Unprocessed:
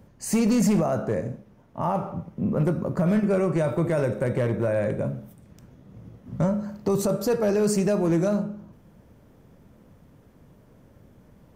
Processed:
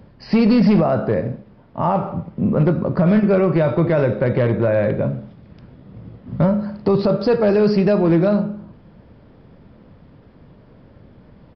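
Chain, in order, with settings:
downsampling to 11,025 Hz
level +7 dB

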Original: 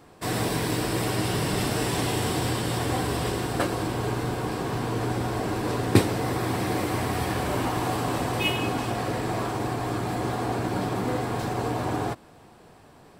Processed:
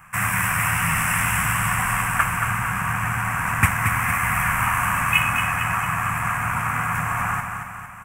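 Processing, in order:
time stretch by overlap-add 0.61×, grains 24 ms
drawn EQ curve 180 Hz 0 dB, 380 Hz −29 dB, 1,200 Hz +11 dB, 2,600 Hz +9 dB, 4,100 Hz −26 dB, 6,200 Hz 0 dB, 10,000 Hz +7 dB
on a send: repeating echo 227 ms, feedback 54%, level −6.5 dB
on the sum: level +4 dB

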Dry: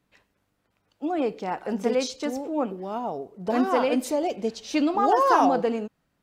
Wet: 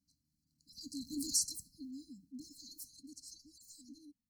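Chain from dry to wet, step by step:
source passing by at 0:01.74, 14 m/s, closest 4.9 metres
dynamic equaliser 220 Hz, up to −5 dB, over −44 dBFS, Q 1.7
change of speed 1.45×
linear-phase brick-wall band-stop 300–4,000 Hz
level +5.5 dB

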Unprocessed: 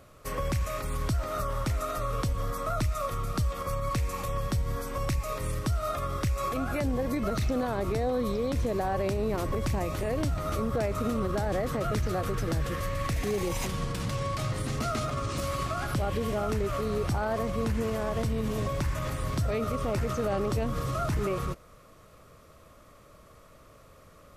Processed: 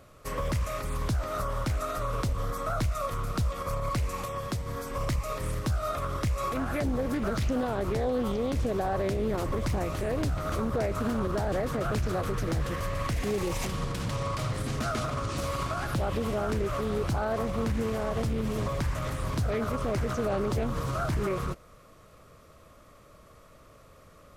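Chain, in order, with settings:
0:04.24–0:04.89: high-pass filter 210 Hz → 75 Hz 6 dB per octave
highs frequency-modulated by the lows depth 0.42 ms

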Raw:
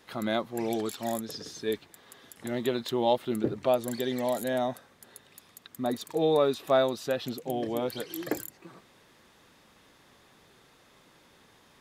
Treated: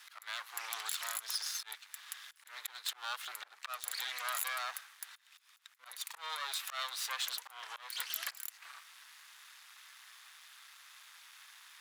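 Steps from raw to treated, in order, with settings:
volume swells 336 ms
parametric band 11,000 Hz +5 dB 0.25 octaves
brickwall limiter −25.5 dBFS, peak gain reduction 10.5 dB
half-wave rectification
high-pass filter 1,200 Hz 24 dB per octave
level +10 dB

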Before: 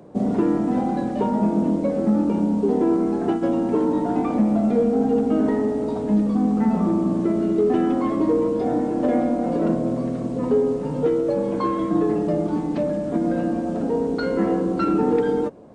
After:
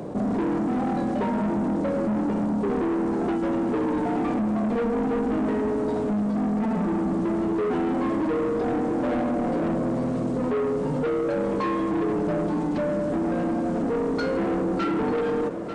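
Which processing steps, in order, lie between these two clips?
soft clipping −22.5 dBFS, distortion −10 dB
on a send: feedback echo with a high-pass in the loop 893 ms, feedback 78%, high-pass 180 Hz, level −18 dB
on the sum: envelope flattener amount 50%

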